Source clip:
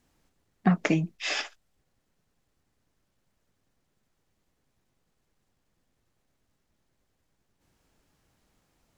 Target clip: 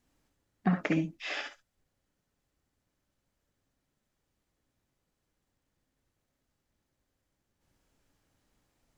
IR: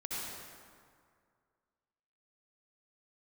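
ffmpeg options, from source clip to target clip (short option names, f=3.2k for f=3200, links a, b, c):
-filter_complex "[0:a]acrossover=split=4100[a][b];[b]acompressor=threshold=-50dB:ratio=4:attack=1:release=60[c];[a][c]amix=inputs=2:normalize=0[d];[1:a]atrim=start_sample=2205,atrim=end_sample=3087[e];[d][e]afir=irnorm=-1:irlink=0"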